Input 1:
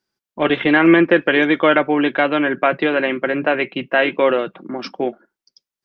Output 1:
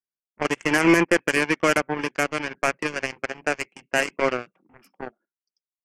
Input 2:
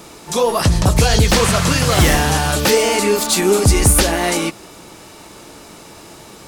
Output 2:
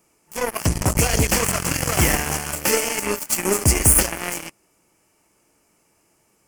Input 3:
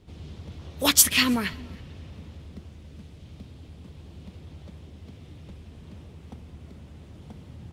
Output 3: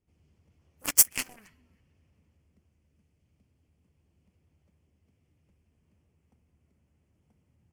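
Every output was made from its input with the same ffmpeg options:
-af "aeval=exprs='0.891*(cos(1*acos(clip(val(0)/0.891,-1,1)))-cos(1*PI/2))+0.141*(cos(7*acos(clip(val(0)/0.891,-1,1)))-cos(7*PI/2))':c=same,aexciter=amount=1.2:drive=2:freq=2k,volume=-6dB"

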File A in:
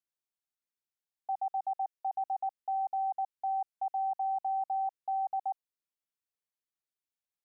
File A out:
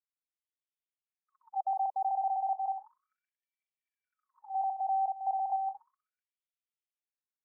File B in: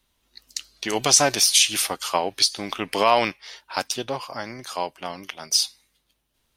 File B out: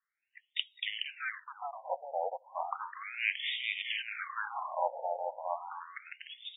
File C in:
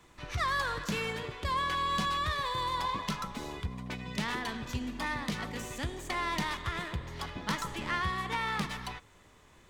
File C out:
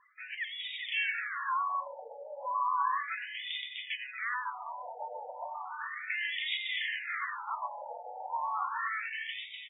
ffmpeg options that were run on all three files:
-af "asoftclip=type=hard:threshold=-8dB,areverse,acompressor=threshold=-32dB:ratio=12,areverse,lowpass=f=3.8k:t=q:w=1.8,afftdn=nr=15:nf=-56,lowshelf=f=100:t=q:w=3:g=12,aecho=1:1:420|672|823.2|913.9|968.4:0.631|0.398|0.251|0.158|0.1,afftfilt=real='re*between(b*sr/1024,640*pow(2700/640,0.5+0.5*sin(2*PI*0.34*pts/sr))/1.41,640*pow(2700/640,0.5+0.5*sin(2*PI*0.34*pts/sr))*1.41)':imag='im*between(b*sr/1024,640*pow(2700/640,0.5+0.5*sin(2*PI*0.34*pts/sr))/1.41,640*pow(2700/640,0.5+0.5*sin(2*PI*0.34*pts/sr))*1.41)':win_size=1024:overlap=0.75,volume=5dB"

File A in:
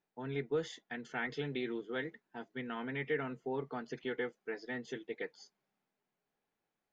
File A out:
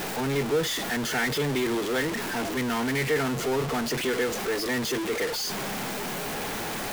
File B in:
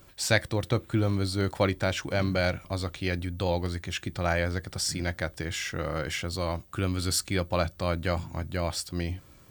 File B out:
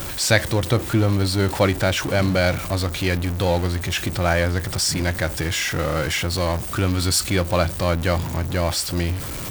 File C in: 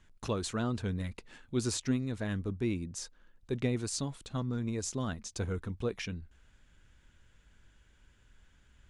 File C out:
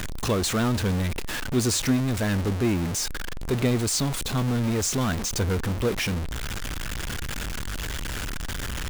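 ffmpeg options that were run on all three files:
-af "aeval=exprs='val(0)+0.5*0.0316*sgn(val(0))':c=same,volume=5.5dB"

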